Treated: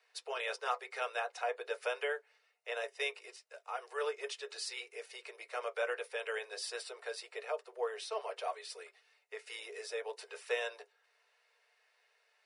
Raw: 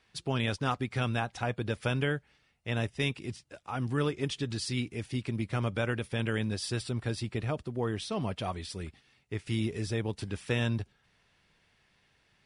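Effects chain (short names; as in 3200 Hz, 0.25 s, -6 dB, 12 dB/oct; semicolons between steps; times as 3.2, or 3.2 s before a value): steep high-pass 410 Hz 96 dB/oct; notch 3300 Hz, Q 9.8; on a send: reverb RT60 0.10 s, pre-delay 3 ms, DRR 5 dB; on the sum: gain -4 dB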